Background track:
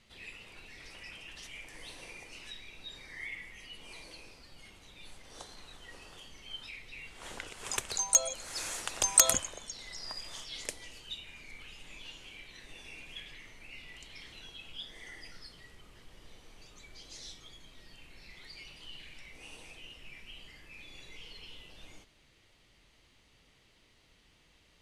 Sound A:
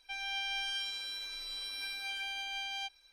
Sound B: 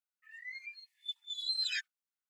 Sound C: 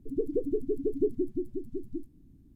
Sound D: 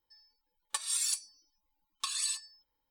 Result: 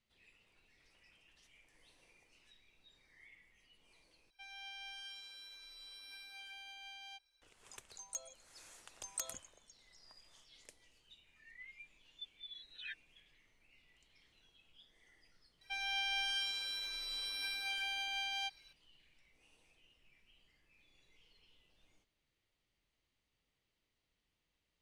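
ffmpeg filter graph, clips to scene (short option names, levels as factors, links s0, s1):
-filter_complex "[1:a]asplit=2[s0][s1];[0:a]volume=0.1[s2];[2:a]aresample=8000,aresample=44100[s3];[s2]asplit=2[s4][s5];[s4]atrim=end=4.304[s6];[s0]atrim=end=3.12,asetpts=PTS-STARTPTS,volume=0.224[s7];[s5]atrim=start=7.416[s8];[s3]atrim=end=2.29,asetpts=PTS-STARTPTS,volume=0.355,afade=t=in:d=0.004:c=hsin,afade=t=out:st=2.286:d=0.004:c=hsin,adelay=11130[s9];[s1]atrim=end=3.12,asetpts=PTS-STARTPTS,volume=0.944,afade=t=in:d=0.004:c=hsin,afade=t=out:st=3.116:d=0.004:c=hsin,adelay=15610[s10];[s6][s7]acrossfade=d=0.004:c1=hsin:c2=hsin[s11];[s11][s8]acrossfade=d=0.004:c1=hsin:c2=hsin[s12];[s12][s9][s10]amix=inputs=3:normalize=0"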